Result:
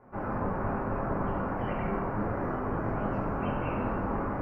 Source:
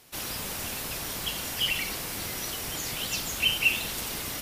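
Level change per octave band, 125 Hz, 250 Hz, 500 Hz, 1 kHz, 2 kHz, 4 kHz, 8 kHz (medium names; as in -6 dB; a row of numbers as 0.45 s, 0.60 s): +9.0 dB, +10.5 dB, +9.5 dB, +9.0 dB, -9.5 dB, under -30 dB, under -40 dB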